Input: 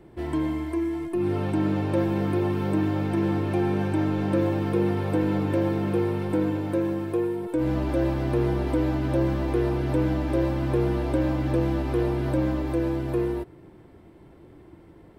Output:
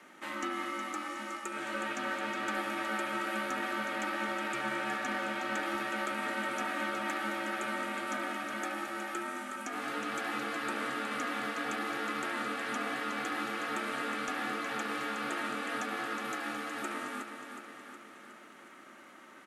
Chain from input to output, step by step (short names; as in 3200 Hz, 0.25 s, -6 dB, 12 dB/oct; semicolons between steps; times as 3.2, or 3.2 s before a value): steep high-pass 910 Hz 96 dB/oct; in parallel at +3 dB: compressor 12:1, threshold -53 dBFS, peak gain reduction 17.5 dB; on the sum: varispeed -22%; ring modulator 480 Hz; overloaded stage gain 31.5 dB; on a send: feedback echo 0.366 s, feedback 59%, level -8 dB; on the sum: gain +6 dB